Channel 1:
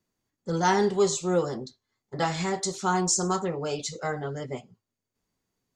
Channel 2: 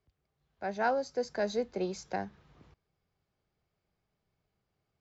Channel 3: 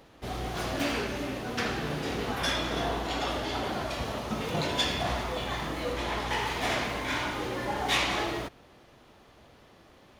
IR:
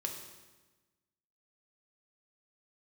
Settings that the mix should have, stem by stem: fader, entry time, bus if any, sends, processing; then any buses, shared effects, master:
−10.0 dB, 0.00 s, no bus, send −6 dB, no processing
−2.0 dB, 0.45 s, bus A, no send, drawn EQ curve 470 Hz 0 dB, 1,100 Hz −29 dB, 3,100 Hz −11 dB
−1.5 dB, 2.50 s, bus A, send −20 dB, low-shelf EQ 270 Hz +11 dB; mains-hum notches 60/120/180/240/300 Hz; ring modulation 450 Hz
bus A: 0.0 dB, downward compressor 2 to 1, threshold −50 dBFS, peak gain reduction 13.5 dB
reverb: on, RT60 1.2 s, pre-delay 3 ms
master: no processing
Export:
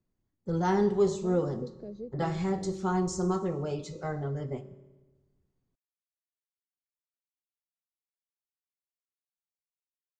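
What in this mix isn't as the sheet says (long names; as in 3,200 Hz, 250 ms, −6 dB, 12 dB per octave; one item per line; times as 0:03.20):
stem 3: muted
master: extra spectral tilt −3 dB per octave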